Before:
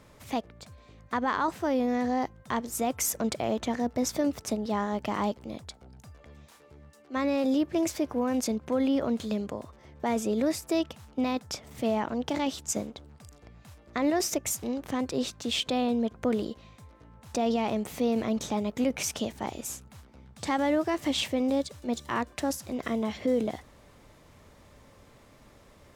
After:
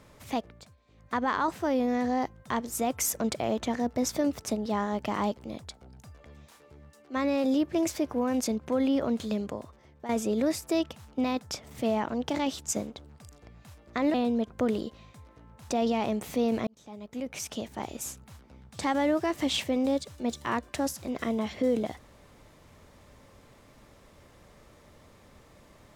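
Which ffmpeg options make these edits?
-filter_complex "[0:a]asplit=6[a][b][c][d][e][f];[a]atrim=end=0.78,asetpts=PTS-STARTPTS,afade=t=out:st=0.5:d=0.28:silence=0.223872[g];[b]atrim=start=0.78:end=0.86,asetpts=PTS-STARTPTS,volume=-13dB[h];[c]atrim=start=0.86:end=10.09,asetpts=PTS-STARTPTS,afade=t=in:d=0.28:silence=0.223872,afade=t=out:st=8.67:d=0.56:silence=0.266073[i];[d]atrim=start=10.09:end=14.142,asetpts=PTS-STARTPTS,afade=t=in:d=0.004:c=hsin:silence=0.266073[j];[e]atrim=start=15.778:end=18.31,asetpts=PTS-STARTPTS,afade=t=out:st=2.528:d=0.004:c=hsin[k];[f]atrim=start=18.31,asetpts=PTS-STARTPTS,afade=t=in:d=1.42[l];[g][h][i][j]concat=n=4:v=0:a=1[m];[k][l]concat=n=2:v=0:a=1[n];[m][n]acrossfade=d=0.004:c1=hsin:c2=hsin"

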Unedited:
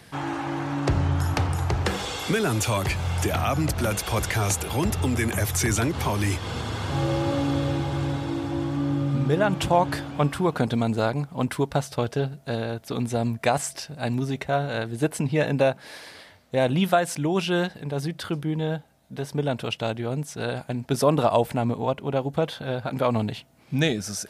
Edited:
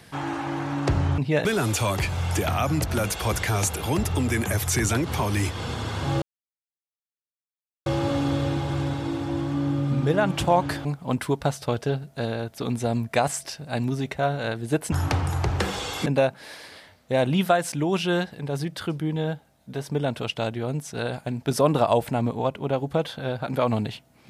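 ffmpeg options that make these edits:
-filter_complex "[0:a]asplit=7[a][b][c][d][e][f][g];[a]atrim=end=1.182[h];[b]atrim=start=15.218:end=15.492[i];[c]atrim=start=2.318:end=7.09,asetpts=PTS-STARTPTS,afade=t=out:st=4.768:d=0.004:c=hsin,apad=pad_dur=1.64[j];[d]atrim=start=7.09:end=10.082,asetpts=PTS-STARTPTS,afade=t=in:d=0.004:c=hsin[k];[e]atrim=start=11.148:end=15.222[l];[f]atrim=start=1.178:end=2.322[m];[g]atrim=start=15.488[n];[h][i]acrossfade=d=0.004:c1=hsin:c2=hsin[o];[j][k]concat=n=2:v=0:a=1[p];[o][p]acrossfade=d=0.004:c1=hsin:c2=hsin[q];[q][l]acrossfade=d=0.004:c1=hsin:c2=hsin[r];[r][m]acrossfade=d=0.004:c1=hsin:c2=hsin[s];[s][n]acrossfade=d=0.004:c1=hsin:c2=hsin"

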